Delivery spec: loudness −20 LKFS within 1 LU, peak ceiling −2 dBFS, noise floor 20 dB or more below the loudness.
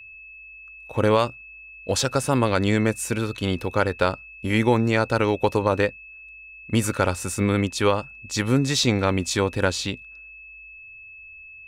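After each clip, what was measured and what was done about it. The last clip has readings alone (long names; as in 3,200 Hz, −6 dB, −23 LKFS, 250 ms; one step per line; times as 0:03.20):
interfering tone 2,600 Hz; level of the tone −41 dBFS; integrated loudness −23.0 LKFS; sample peak −7.0 dBFS; target loudness −20.0 LKFS
→ notch filter 2,600 Hz, Q 30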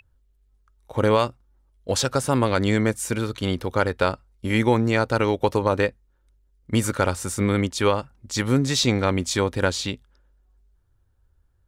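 interfering tone none found; integrated loudness −23.0 LKFS; sample peak −7.0 dBFS; target loudness −20.0 LKFS
→ level +3 dB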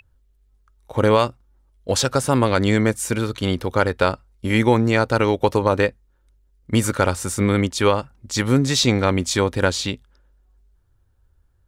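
integrated loudness −20.0 LKFS; sample peak −4.0 dBFS; background noise floor −61 dBFS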